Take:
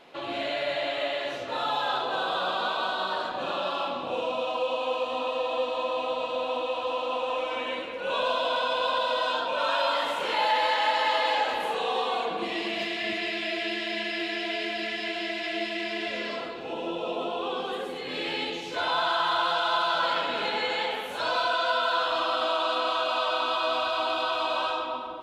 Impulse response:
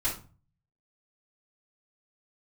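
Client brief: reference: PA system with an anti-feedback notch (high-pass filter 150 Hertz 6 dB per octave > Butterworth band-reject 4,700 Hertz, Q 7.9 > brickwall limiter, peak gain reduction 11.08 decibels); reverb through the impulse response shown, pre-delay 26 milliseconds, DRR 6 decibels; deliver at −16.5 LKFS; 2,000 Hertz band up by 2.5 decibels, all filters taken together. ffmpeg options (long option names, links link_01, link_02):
-filter_complex "[0:a]equalizer=frequency=2000:width_type=o:gain=3.5,asplit=2[link_01][link_02];[1:a]atrim=start_sample=2205,adelay=26[link_03];[link_02][link_03]afir=irnorm=-1:irlink=0,volume=-13dB[link_04];[link_01][link_04]amix=inputs=2:normalize=0,highpass=frequency=150:poles=1,asuperstop=centerf=4700:order=8:qfactor=7.9,volume=14dB,alimiter=limit=-8.5dB:level=0:latency=1"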